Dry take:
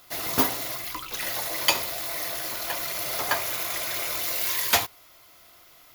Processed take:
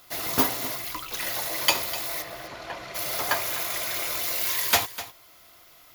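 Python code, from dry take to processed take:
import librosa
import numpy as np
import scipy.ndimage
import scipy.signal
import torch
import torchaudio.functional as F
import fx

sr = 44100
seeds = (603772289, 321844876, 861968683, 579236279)

p1 = fx.spacing_loss(x, sr, db_at_10k=23, at=(2.21, 2.94), fade=0.02)
y = p1 + fx.echo_single(p1, sr, ms=251, db=-14.5, dry=0)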